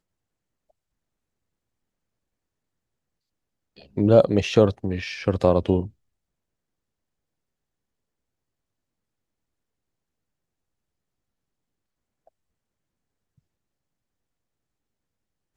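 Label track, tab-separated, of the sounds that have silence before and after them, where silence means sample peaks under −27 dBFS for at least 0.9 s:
3.970000	5.850000	sound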